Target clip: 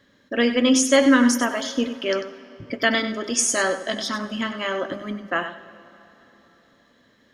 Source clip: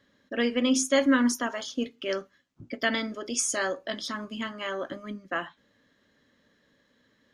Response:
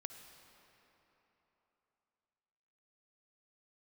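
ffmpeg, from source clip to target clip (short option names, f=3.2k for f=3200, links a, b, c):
-filter_complex "[0:a]asplit=2[a][b];[1:a]atrim=start_sample=2205,adelay=96[c];[b][c]afir=irnorm=-1:irlink=0,volume=-6dB[d];[a][d]amix=inputs=2:normalize=0,volume=6.5dB"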